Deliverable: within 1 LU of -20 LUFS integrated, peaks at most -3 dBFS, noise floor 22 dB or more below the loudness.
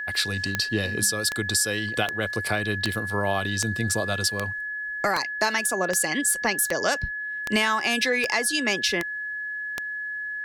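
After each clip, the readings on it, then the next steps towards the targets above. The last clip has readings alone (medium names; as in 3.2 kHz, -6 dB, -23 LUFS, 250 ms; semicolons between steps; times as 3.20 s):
clicks found 13; steady tone 1.7 kHz; tone level -29 dBFS; loudness -24.5 LUFS; peak level -7.5 dBFS; loudness target -20.0 LUFS
-> de-click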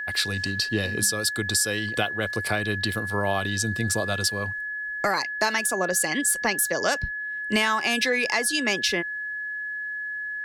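clicks found 0; steady tone 1.7 kHz; tone level -29 dBFS
-> band-stop 1.7 kHz, Q 30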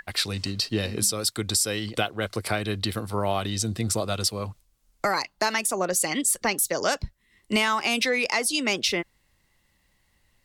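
steady tone not found; loudness -25.5 LUFS; peak level -12.0 dBFS; loudness target -20.0 LUFS
-> trim +5.5 dB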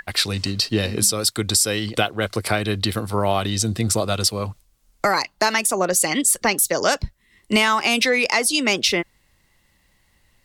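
loudness -20.0 LUFS; peak level -6.5 dBFS; noise floor -63 dBFS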